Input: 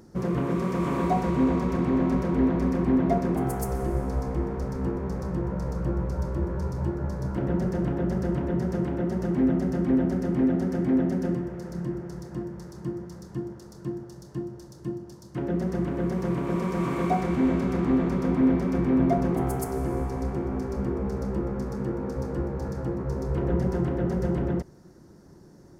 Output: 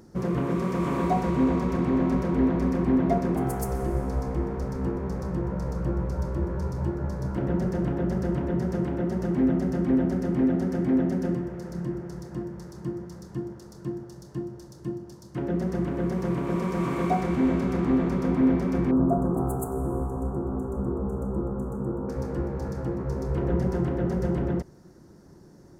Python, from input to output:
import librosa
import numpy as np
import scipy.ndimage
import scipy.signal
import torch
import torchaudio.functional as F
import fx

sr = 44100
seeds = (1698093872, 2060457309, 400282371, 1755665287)

y = fx.ellip_bandstop(x, sr, low_hz=1300.0, high_hz=7600.0, order=3, stop_db=40, at=(18.91, 22.09))